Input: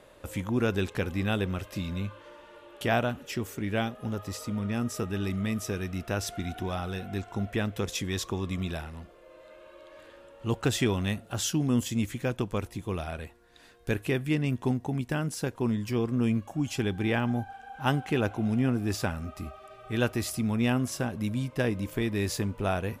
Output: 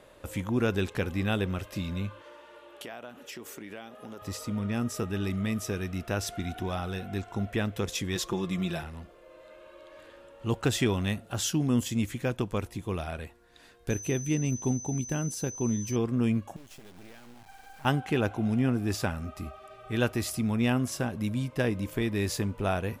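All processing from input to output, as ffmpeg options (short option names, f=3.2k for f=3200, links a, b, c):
-filter_complex "[0:a]asettb=1/sr,asplit=3[a][b][c];[a]atrim=end=2.224[d];[b]atrim=start=2.22:end=4.22,asetpts=PTS-STARTPTS,afade=t=in:d=0.004:c=qsin,afade=t=out:st=1.996:d=0.004:c=qsin,highpass=290,acompressor=threshold=-38dB:ratio=6:attack=3.2:release=140:knee=1:detection=peak,aeval=exprs='val(0)+0.000158*(sin(2*PI*60*n/s)+sin(2*PI*2*60*n/s)/2+sin(2*PI*3*60*n/s)/3+sin(2*PI*4*60*n/s)/4+sin(2*PI*5*60*n/s)/5)':c=same[e];[c]atrim=start=4.216[f];[d][e]acrossfade=d=0.004:c1=hsin:c2=qsin[g];[g][f]acrossfade=d=0.004:c1=qsin:c2=hsin,asettb=1/sr,asplit=3[h][i][j];[h]atrim=end=8.154[k];[i]atrim=start=8.15:end=8.83,asetpts=PTS-STARTPTS,afade=t=in:d=0.004:c=qsin,afade=t=out:st=0.676:d=0.004:c=qsin,equalizer=f=99:w=4.1:g=-4.5,aecho=1:1:5.8:0.68,atrim=end_sample=29988,asoftclip=type=hard:threshold=-21dB[l];[j]atrim=start=8.826[m];[k][l]acrossfade=d=0.004:c1=hsin:c2=qsin[n];[n][m]acrossfade=d=0.004:c1=qsin:c2=hsin,asettb=1/sr,asplit=3[o][p][q];[o]atrim=end=13.904[r];[p]atrim=start=13.9:end=15.96,asetpts=PTS-STARTPTS,afade=t=in:d=0.004:c=qsin,afade=t=out:st=2.056:d=0.004:c=qsin,equalizer=f=1.6k:t=o:w=2.7:g=-6,aeval=exprs='val(0)+0.0112*sin(2*PI*6100*n/s)':c=same[s];[q]atrim=start=15.956[t];[r][s]acrossfade=d=0.004:c1=hsin:c2=qsin[u];[u][t]acrossfade=d=0.004:c1=qsin:c2=hsin,asettb=1/sr,asplit=3[v][w][x];[v]atrim=end=16.564[y];[w]atrim=start=16.56:end=17.85,asetpts=PTS-STARTPTS,afade=t=in:d=0.004:c=qsin,afade=t=out:st=1.286:d=0.004:c=qsin,acompressor=threshold=-42dB:ratio=8:attack=3.2:release=140:knee=1:detection=peak,acrusher=bits=6:dc=4:mix=0:aa=0.000001[z];[x]atrim=start=17.846[aa];[y][z]acrossfade=d=0.004:c1=hsin:c2=qsin[ab];[ab][aa]acrossfade=d=0.004:c1=qsin:c2=hsin"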